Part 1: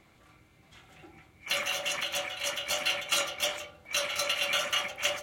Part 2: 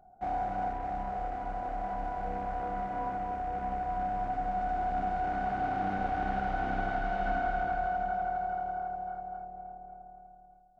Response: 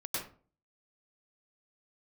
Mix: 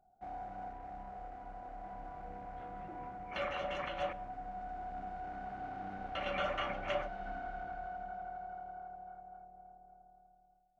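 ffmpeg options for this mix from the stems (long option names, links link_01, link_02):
-filter_complex "[0:a]lowpass=1200,adelay=1850,volume=0dB,asplit=3[link_01][link_02][link_03];[link_01]atrim=end=4.13,asetpts=PTS-STARTPTS,afade=type=out:start_time=4.126:duration=0.004:curve=hsin[link_04];[link_02]atrim=start=4.13:end=6.15,asetpts=PTS-STARTPTS,volume=0[link_05];[link_03]atrim=start=6.15,asetpts=PTS-STARTPTS,afade=type=in:duration=0.004:curve=hsin[link_06];[link_04][link_05][link_06]concat=n=3:v=0:a=1,asplit=2[link_07][link_08];[link_08]volume=-22dB[link_09];[1:a]volume=-12dB[link_10];[2:a]atrim=start_sample=2205[link_11];[link_09][link_11]afir=irnorm=-1:irlink=0[link_12];[link_07][link_10][link_12]amix=inputs=3:normalize=0"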